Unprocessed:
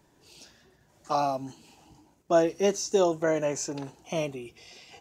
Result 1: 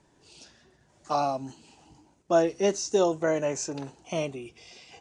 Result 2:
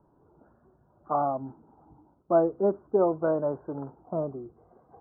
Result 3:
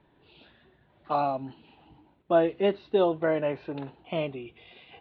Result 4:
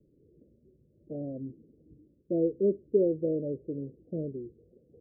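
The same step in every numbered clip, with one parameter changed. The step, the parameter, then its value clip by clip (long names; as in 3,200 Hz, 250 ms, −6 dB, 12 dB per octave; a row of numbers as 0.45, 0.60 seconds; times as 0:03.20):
Butterworth low-pass, frequency: 10,000, 1,400, 3,900, 530 Hertz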